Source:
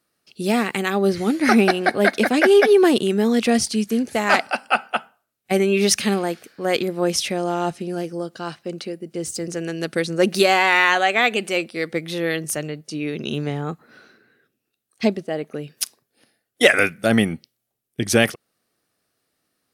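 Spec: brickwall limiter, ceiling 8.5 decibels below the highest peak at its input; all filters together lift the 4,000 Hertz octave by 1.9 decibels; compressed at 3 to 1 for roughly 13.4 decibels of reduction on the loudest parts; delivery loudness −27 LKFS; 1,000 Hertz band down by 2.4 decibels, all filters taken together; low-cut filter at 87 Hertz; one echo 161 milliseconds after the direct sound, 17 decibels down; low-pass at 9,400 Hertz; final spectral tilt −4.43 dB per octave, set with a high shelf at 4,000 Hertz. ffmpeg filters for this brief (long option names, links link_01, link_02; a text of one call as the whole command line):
ffmpeg -i in.wav -af "highpass=87,lowpass=9400,equalizer=frequency=1000:width_type=o:gain=-3.5,highshelf=frequency=4000:gain=-7,equalizer=frequency=4000:width_type=o:gain=7,acompressor=threshold=-29dB:ratio=3,alimiter=limit=-21dB:level=0:latency=1,aecho=1:1:161:0.141,volume=5.5dB" out.wav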